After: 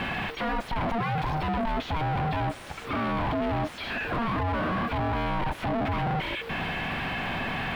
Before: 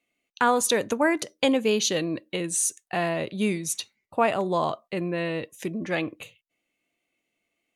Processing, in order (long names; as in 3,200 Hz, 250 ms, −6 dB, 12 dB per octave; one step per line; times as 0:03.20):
sign of each sample alone
ring modulation 460 Hz
high-frequency loss of the air 460 metres
level +5 dB